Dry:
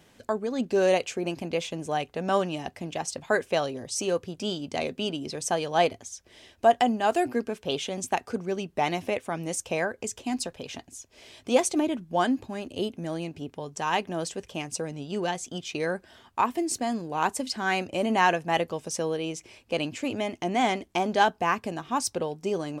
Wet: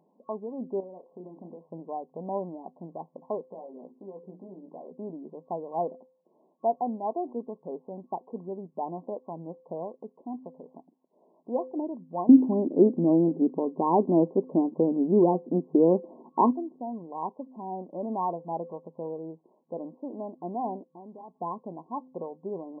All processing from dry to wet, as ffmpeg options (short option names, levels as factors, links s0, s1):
-filter_complex "[0:a]asettb=1/sr,asplit=3[s0][s1][s2];[s0]atrim=end=0.804[s3];[s1]atrim=start=0.8:end=1.61,asetpts=PTS-STARTPTS,afade=t=in:d=0.004:c=qsin,afade=t=out:st=0.806:d=0.004:c=qsin,acompressor=threshold=0.0224:ratio=8:attack=3.2:release=140:knee=1:detection=peak,asplit=2[s4][s5];[s5]adelay=33,volume=0.398[s6];[s4][s6]amix=inputs=2:normalize=0,atrim=end_sample=35721[s7];[s2]atrim=start=1.606[s8];[s3][s7]acrossfade=d=0.004:c1=hsin:c2=qsin[s9];[s9][s8]acrossfade=d=0.004:c1=qsin:c2=hsin,asettb=1/sr,asplit=3[s10][s11][s12];[s10]atrim=end=3.514[s13];[s11]atrim=start=3.51:end=4.92,asetpts=PTS-STARTPTS,afade=t=in:d=0.004:c=qsin,afade=t=out:st=1.406:d=0.004:c=qsin,acompressor=threshold=0.0224:ratio=5:attack=3.2:release=140:knee=1:detection=peak,bandreject=f=60:t=h:w=6,bandreject=f=120:t=h:w=6,bandreject=f=180:t=h:w=6,bandreject=f=240:t=h:w=6,bandreject=f=300:t=h:w=6,bandreject=f=360:t=h:w=6,bandreject=f=420:t=h:w=6,asplit=2[s14][s15];[s15]adelay=16,volume=0.631[s16];[s14][s16]amix=inputs=2:normalize=0,atrim=end_sample=62181[s17];[s12]atrim=start=4.916[s18];[s13][s17]acrossfade=d=0.004:c1=hsin:c2=qsin[s19];[s19][s18]acrossfade=d=0.004:c1=qsin:c2=hsin,asettb=1/sr,asplit=3[s20][s21][s22];[s20]atrim=end=12.294[s23];[s21]atrim=start=12.29:end=16.53,asetpts=PTS-STARTPTS,afade=t=in:d=0.004:c=qsin,afade=t=out:st=4.236:d=0.004:c=qsin,acontrast=60,equalizer=f=300:w=0.89:g=15[s24];[s22]atrim=start=16.526[s25];[s23][s24]acrossfade=d=0.004:c1=hsin:c2=qsin[s26];[s26][s25]acrossfade=d=0.004:c1=qsin:c2=hsin,asettb=1/sr,asplit=3[s27][s28][s29];[s27]atrim=end=20.854[s30];[s28]atrim=start=20.85:end=21.35,asetpts=PTS-STARTPTS,afade=t=in:d=0.004:c=qsin,afade=t=out:st=0.496:d=0.004:c=qsin,equalizer=f=650:w=1.6:g=-5.5,acompressor=threshold=0.00708:ratio=2:attack=3.2:release=140:knee=1:detection=peak,aeval=exprs='(mod(25.1*val(0)+1,2)-1)/25.1':c=same[s31];[s29]atrim=start=21.346[s32];[s30][s31]acrossfade=d=0.004:c1=hsin:c2=qsin[s33];[s33][s32]acrossfade=d=0.004:c1=qsin:c2=hsin,bandreject=f=257.6:t=h:w=4,bandreject=f=515.2:t=h:w=4,afftfilt=real='re*between(b*sr/4096,160,1100)':imag='im*between(b*sr/4096,160,1100)':win_size=4096:overlap=0.75,volume=0.473"